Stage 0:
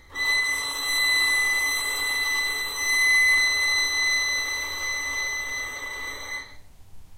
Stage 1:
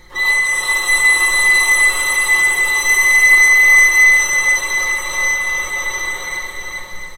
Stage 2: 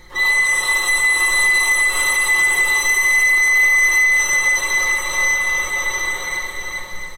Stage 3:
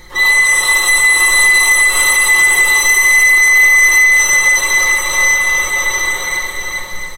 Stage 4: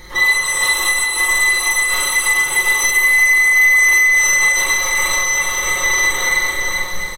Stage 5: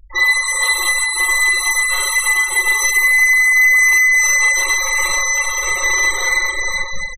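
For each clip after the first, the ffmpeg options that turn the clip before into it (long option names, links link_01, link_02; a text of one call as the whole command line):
ffmpeg -i in.wav -filter_complex "[0:a]aecho=1:1:5.6:0.87,asplit=2[link_01][link_02];[link_02]aecho=0:1:410|676.5|849.7|962.3|1036:0.631|0.398|0.251|0.158|0.1[link_03];[link_01][link_03]amix=inputs=2:normalize=0,volume=6dB" out.wav
ffmpeg -i in.wav -af "alimiter=limit=-8.5dB:level=0:latency=1:release=92" out.wav
ffmpeg -i in.wav -af "highshelf=frequency=5300:gain=4.5,volume=5dB" out.wav
ffmpeg -i in.wav -filter_complex "[0:a]bandreject=frequency=7600:width=9.8,alimiter=limit=-9dB:level=0:latency=1:release=54,asplit=2[link_01][link_02];[link_02]adelay=43,volume=-3.5dB[link_03];[link_01][link_03]amix=inputs=2:normalize=0" out.wav
ffmpeg -i in.wav -af "afftfilt=real='re*gte(hypot(re,im),0.0891)':imag='im*gte(hypot(re,im),0.0891)':win_size=1024:overlap=0.75" out.wav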